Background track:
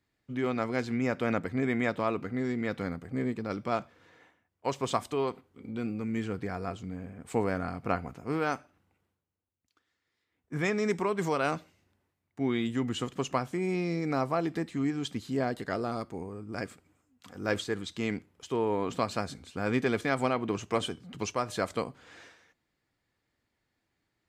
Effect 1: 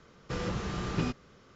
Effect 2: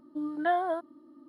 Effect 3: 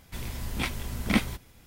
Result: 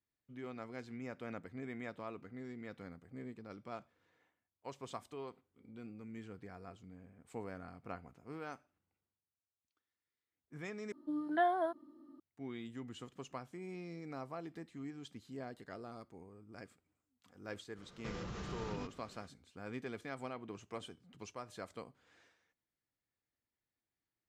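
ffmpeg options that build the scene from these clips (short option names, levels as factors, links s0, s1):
-filter_complex "[0:a]volume=0.158[s0];[1:a]acompressor=threshold=0.0141:ratio=6:attack=3.2:release=140:knee=1:detection=peak[s1];[s0]asplit=2[s2][s3];[s2]atrim=end=10.924[s4];[2:a]atrim=end=1.28,asetpts=PTS-STARTPTS,volume=0.596[s5];[s3]atrim=start=12.196[s6];[s1]atrim=end=1.55,asetpts=PTS-STARTPTS,volume=0.708,afade=t=in:d=0.05,afade=t=out:st=1.5:d=0.05,adelay=17750[s7];[s4][s5]acrossfade=d=0.004:c1=hsin:c2=hsin[s8];[s8][s6]acrossfade=d=0.004:c1=hsin:c2=hsin[s9];[s9][s7]amix=inputs=2:normalize=0"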